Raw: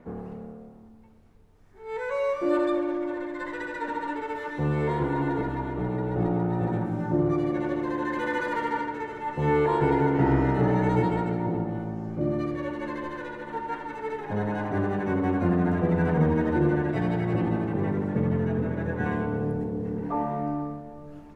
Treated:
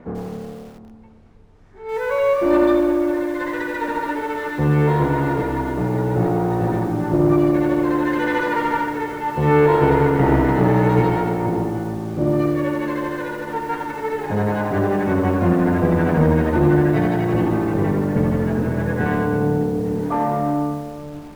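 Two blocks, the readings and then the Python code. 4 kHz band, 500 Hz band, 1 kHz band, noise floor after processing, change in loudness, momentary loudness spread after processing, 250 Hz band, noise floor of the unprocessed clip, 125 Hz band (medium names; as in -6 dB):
+8.0 dB, +8.5 dB, +7.5 dB, -41 dBFS, +7.5 dB, 10 LU, +7.5 dB, -49 dBFS, +7.0 dB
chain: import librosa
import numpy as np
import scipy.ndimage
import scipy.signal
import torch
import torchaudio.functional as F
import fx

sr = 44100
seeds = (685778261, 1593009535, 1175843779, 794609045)

y = fx.diode_clip(x, sr, knee_db=-21.0)
y = fx.air_absorb(y, sr, metres=52.0)
y = fx.echo_crushed(y, sr, ms=88, feedback_pct=35, bits=8, wet_db=-8.0)
y = F.gain(torch.from_numpy(y), 8.5).numpy()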